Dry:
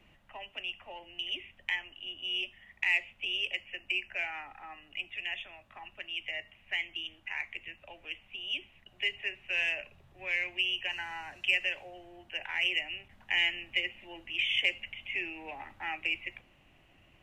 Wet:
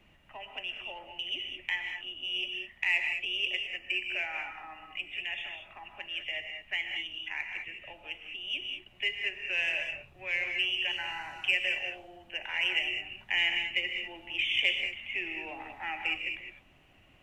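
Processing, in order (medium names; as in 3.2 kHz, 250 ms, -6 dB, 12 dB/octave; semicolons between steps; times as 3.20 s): gated-style reverb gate 230 ms rising, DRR 4 dB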